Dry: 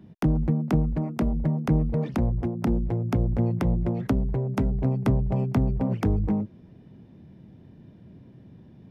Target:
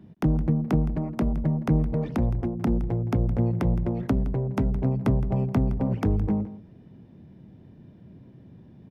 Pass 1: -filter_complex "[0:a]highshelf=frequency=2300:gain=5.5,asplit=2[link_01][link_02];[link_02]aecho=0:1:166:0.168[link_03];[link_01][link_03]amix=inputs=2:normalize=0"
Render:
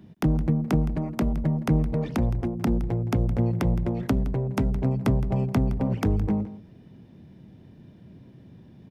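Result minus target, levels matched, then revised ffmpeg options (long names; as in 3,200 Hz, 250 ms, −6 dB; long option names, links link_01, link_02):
4,000 Hz band +6.0 dB
-filter_complex "[0:a]highshelf=frequency=2300:gain=-3,asplit=2[link_01][link_02];[link_02]aecho=0:1:166:0.168[link_03];[link_01][link_03]amix=inputs=2:normalize=0"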